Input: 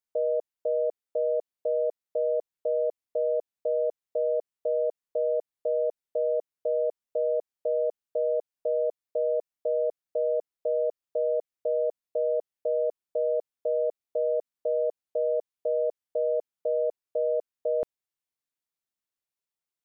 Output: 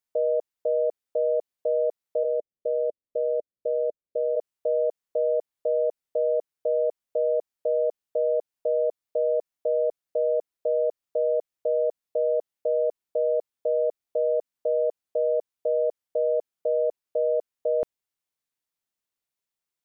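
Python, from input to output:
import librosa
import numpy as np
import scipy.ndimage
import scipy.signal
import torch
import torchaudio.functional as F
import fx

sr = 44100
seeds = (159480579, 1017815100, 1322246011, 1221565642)

y = fx.ellip_lowpass(x, sr, hz=600.0, order=4, stop_db=40, at=(2.23, 4.35), fade=0.02)
y = y * librosa.db_to_amplitude(2.5)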